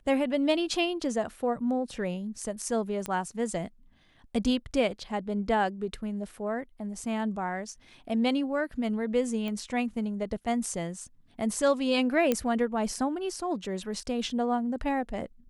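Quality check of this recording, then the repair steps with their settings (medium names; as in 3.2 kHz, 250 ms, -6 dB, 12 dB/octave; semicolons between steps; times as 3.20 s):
3.06 s: pop -17 dBFS
9.48 s: pop -22 dBFS
12.32 s: pop -12 dBFS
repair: de-click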